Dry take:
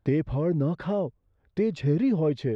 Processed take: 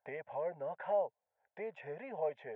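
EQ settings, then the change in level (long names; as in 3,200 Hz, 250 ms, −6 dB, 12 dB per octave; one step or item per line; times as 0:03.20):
four-pole ladder band-pass 1,000 Hz, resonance 30%
phaser with its sweep stopped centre 1,200 Hz, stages 6
+10.5 dB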